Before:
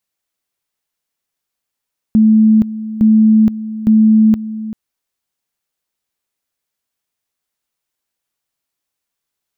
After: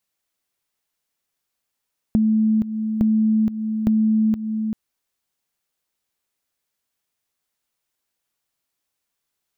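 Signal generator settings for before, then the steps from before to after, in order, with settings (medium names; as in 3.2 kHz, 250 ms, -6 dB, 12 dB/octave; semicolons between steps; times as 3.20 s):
two-level tone 218 Hz -5.5 dBFS, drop 15 dB, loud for 0.47 s, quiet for 0.39 s, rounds 3
compression 6:1, threshold -17 dBFS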